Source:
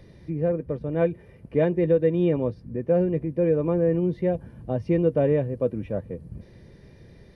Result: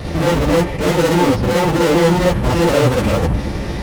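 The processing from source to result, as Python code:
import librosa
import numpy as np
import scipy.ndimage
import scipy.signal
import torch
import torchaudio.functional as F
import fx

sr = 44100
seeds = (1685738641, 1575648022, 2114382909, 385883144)

y = fx.fuzz(x, sr, gain_db=47.0, gate_db=-50.0)
y = fx.rev_gated(y, sr, seeds[0], gate_ms=140, shape='rising', drr_db=-4.0)
y = fx.stretch_vocoder(y, sr, factor=0.52)
y = y * 10.0 ** (-4.5 / 20.0)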